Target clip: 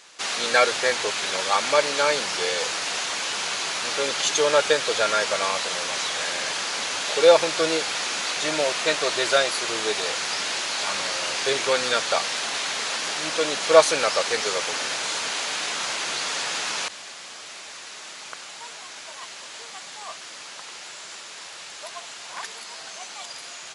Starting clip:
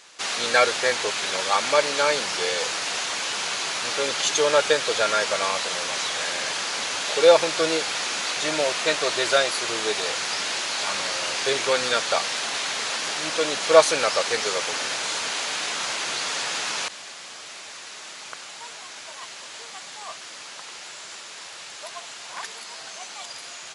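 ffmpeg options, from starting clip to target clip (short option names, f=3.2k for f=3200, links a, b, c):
-af "bandreject=f=60:t=h:w=6,bandreject=f=120:t=h:w=6"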